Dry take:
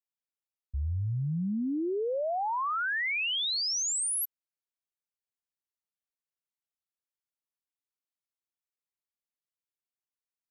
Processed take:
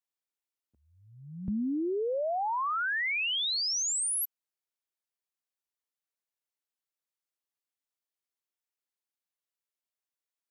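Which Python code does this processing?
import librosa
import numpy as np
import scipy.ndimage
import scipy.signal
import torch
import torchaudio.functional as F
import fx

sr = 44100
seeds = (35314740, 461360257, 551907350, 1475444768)

y = fx.highpass(x, sr, hz=fx.steps((0.0, 230.0), (1.48, 62.0), (3.52, 280.0)), slope=24)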